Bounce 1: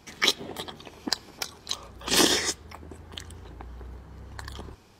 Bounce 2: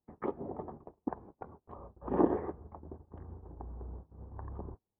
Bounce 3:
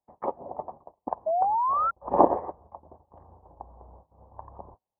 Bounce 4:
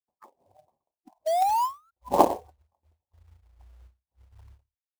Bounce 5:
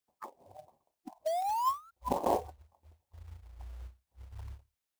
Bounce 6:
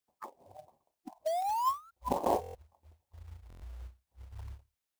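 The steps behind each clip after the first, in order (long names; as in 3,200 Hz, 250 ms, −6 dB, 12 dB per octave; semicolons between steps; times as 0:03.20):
noise gate −43 dBFS, range −31 dB; inverse Chebyshev low-pass filter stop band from 4,200 Hz, stop band 70 dB; level −2 dB
flat-topped bell 760 Hz +14.5 dB 1.3 octaves; sound drawn into the spectrogram rise, 0:01.26–0:01.91, 620–1,400 Hz −23 dBFS; expander for the loud parts 1.5 to 1, over −36 dBFS; level +2 dB
noise reduction from a noise print of the clip's start 27 dB; floating-point word with a short mantissa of 2 bits; every ending faded ahead of time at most 230 dB per second; level +1 dB
compressor whose output falls as the input rises −31 dBFS, ratio −1
buffer that repeats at 0:02.41/0:03.48, samples 1,024, times 5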